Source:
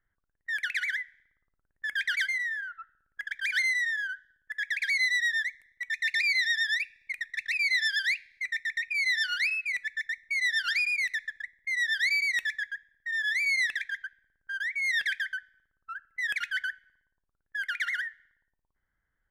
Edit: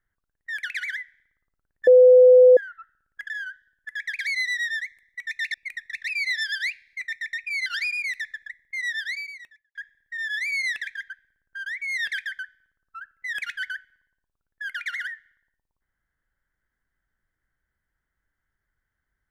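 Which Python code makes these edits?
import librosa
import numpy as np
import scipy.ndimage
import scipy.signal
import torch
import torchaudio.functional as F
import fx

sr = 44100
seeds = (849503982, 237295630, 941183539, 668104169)

y = fx.studio_fade_out(x, sr, start_s=11.78, length_s=0.91)
y = fx.edit(y, sr, fx.bleep(start_s=1.87, length_s=0.7, hz=504.0, db=-8.5),
    fx.cut(start_s=3.3, length_s=0.63),
    fx.cut(start_s=6.17, length_s=0.81),
    fx.cut(start_s=9.1, length_s=1.5), tone=tone)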